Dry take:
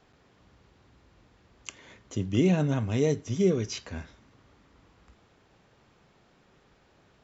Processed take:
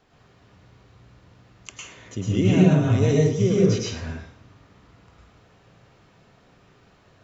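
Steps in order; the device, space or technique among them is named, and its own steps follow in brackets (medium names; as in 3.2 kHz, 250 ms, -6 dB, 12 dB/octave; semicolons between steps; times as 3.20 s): bathroom (reverberation RT60 0.65 s, pre-delay 101 ms, DRR -4.5 dB)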